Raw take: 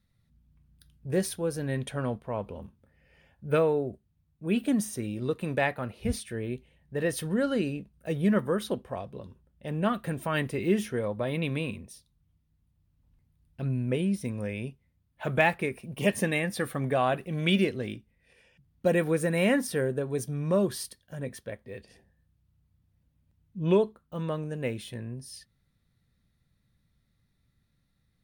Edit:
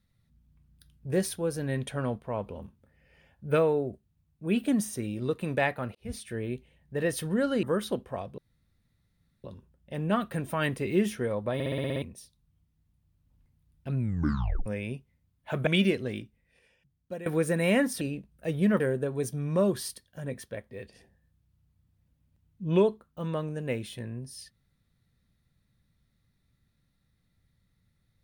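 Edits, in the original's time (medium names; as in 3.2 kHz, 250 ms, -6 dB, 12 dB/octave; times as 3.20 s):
5.95–6.33 s: fade in
7.63–8.42 s: move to 19.75 s
9.17 s: insert room tone 1.06 s
11.27 s: stutter in place 0.06 s, 8 plays
13.71 s: tape stop 0.68 s
15.40–17.41 s: delete
17.91–19.00 s: fade out, to -18 dB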